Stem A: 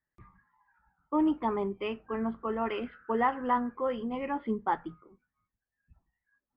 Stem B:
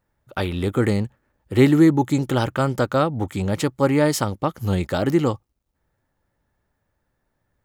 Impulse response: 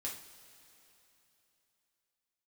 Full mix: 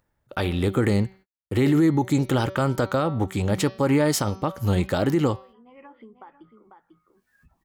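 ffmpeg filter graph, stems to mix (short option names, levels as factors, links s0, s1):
-filter_complex "[0:a]lowshelf=f=160:g=-10,acompressor=threshold=0.02:ratio=6,adelay=1550,volume=0.188,asplit=2[s0][s1];[s1]volume=0.178[s2];[1:a]bandreject=f=190.9:t=h:w=4,bandreject=f=381.8:t=h:w=4,bandreject=f=572.7:t=h:w=4,bandreject=f=763.6:t=h:w=4,bandreject=f=954.5:t=h:w=4,bandreject=f=1145.4:t=h:w=4,bandreject=f=1336.3:t=h:w=4,bandreject=f=1527.2:t=h:w=4,bandreject=f=1718.1:t=h:w=4,bandreject=f=1909:t=h:w=4,bandreject=f=2099.9:t=h:w=4,bandreject=f=2290.8:t=h:w=4,bandreject=f=2481.7:t=h:w=4,bandreject=f=2672.6:t=h:w=4,bandreject=f=2863.5:t=h:w=4,bandreject=f=3054.4:t=h:w=4,bandreject=f=3245.3:t=h:w=4,bandreject=f=3436.2:t=h:w=4,bandreject=f=3627.1:t=h:w=4,bandreject=f=3818:t=h:w=4,bandreject=f=4008.9:t=h:w=4,bandreject=f=4199.8:t=h:w=4,bandreject=f=4390.7:t=h:w=4,bandreject=f=4581.6:t=h:w=4,bandreject=f=4772.5:t=h:w=4,bandreject=f=4963.4:t=h:w=4,bandreject=f=5154.3:t=h:w=4,bandreject=f=5345.2:t=h:w=4,bandreject=f=5536.1:t=h:w=4,bandreject=f=5727:t=h:w=4,bandreject=f=5917.9:t=h:w=4,bandreject=f=6108.8:t=h:w=4,bandreject=f=6299.7:t=h:w=4,agate=range=0.00282:threshold=0.00562:ratio=16:detection=peak,volume=1.12[s3];[s2]aecho=0:1:495:1[s4];[s0][s3][s4]amix=inputs=3:normalize=0,acompressor=mode=upward:threshold=0.0141:ratio=2.5,alimiter=limit=0.237:level=0:latency=1:release=53"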